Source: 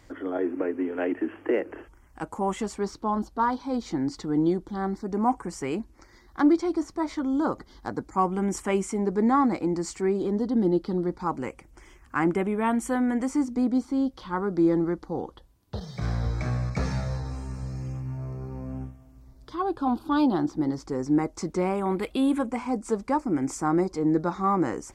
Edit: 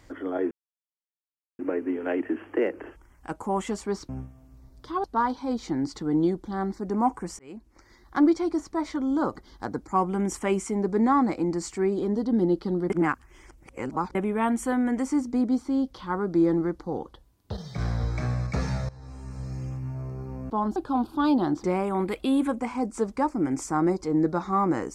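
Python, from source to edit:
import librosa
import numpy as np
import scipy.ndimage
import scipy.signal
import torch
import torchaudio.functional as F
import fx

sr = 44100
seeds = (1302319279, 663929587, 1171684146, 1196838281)

y = fx.edit(x, sr, fx.insert_silence(at_s=0.51, length_s=1.08),
    fx.swap(start_s=3.01, length_s=0.26, other_s=18.73, other_length_s=0.95),
    fx.fade_in_span(start_s=5.62, length_s=0.81, curve='qsin'),
    fx.reverse_span(start_s=11.13, length_s=1.25),
    fx.fade_in_from(start_s=17.12, length_s=0.64, floor_db=-20.0),
    fx.cut(start_s=20.56, length_s=0.99), tone=tone)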